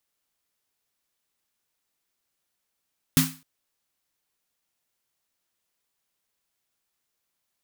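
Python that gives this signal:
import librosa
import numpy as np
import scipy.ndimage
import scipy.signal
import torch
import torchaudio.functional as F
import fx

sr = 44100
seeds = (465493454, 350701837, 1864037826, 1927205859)

y = fx.drum_snare(sr, seeds[0], length_s=0.26, hz=160.0, second_hz=260.0, noise_db=-2.0, noise_from_hz=970.0, decay_s=0.31, noise_decay_s=0.34)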